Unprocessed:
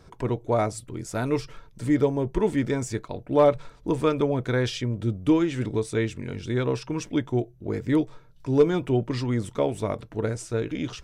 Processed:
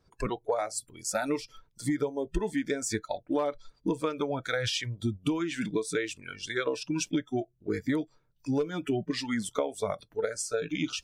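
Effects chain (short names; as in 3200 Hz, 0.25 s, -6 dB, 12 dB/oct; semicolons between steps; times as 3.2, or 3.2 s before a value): harmonic-percussive split percussive +6 dB; spectral noise reduction 21 dB; compressor 12:1, threshold -27 dBFS, peak gain reduction 17.5 dB; gain +1.5 dB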